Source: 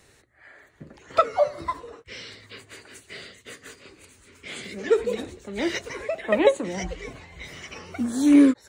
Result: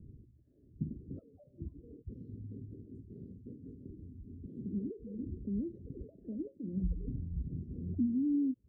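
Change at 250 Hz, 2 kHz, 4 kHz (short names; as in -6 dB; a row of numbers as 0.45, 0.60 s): -12.0 dB, under -40 dB, under -40 dB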